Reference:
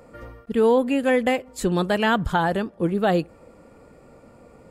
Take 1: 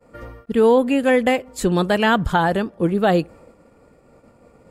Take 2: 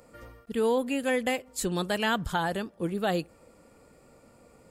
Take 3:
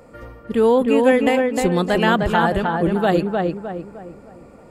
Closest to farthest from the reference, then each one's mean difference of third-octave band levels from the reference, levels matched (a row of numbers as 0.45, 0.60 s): 1, 2, 3; 1.0, 2.5, 4.5 dB